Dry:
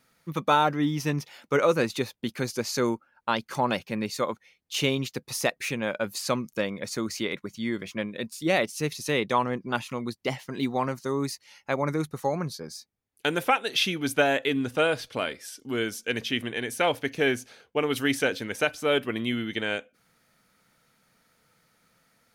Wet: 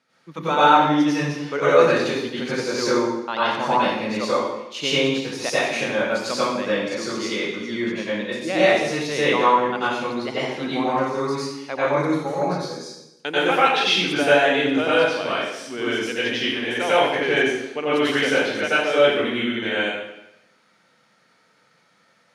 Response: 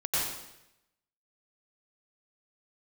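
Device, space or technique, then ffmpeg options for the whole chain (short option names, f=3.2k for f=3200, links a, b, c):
supermarket ceiling speaker: -filter_complex "[0:a]highpass=210,lowpass=5.7k[a];[1:a]atrim=start_sample=2205[b];[a][b]afir=irnorm=-1:irlink=0,volume=-1.5dB"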